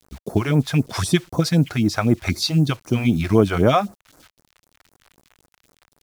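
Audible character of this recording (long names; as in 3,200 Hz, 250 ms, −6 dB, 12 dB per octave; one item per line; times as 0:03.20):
a quantiser's noise floor 8 bits, dither none
phaser sweep stages 2, 3.9 Hz, lowest notch 190–3,000 Hz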